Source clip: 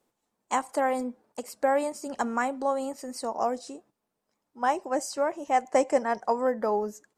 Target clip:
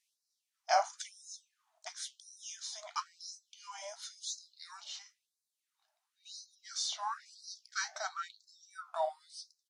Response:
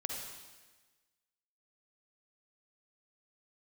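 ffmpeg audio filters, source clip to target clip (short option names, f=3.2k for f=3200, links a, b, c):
-af "flanger=delay=6.6:depth=7.4:regen=-62:speed=0.82:shape=sinusoidal,asetrate=32667,aresample=44100,afftfilt=real='re*gte(b*sr/1024,590*pow(3900/590,0.5+0.5*sin(2*PI*0.97*pts/sr)))':imag='im*gte(b*sr/1024,590*pow(3900/590,0.5+0.5*sin(2*PI*0.97*pts/sr)))':win_size=1024:overlap=0.75,volume=5dB"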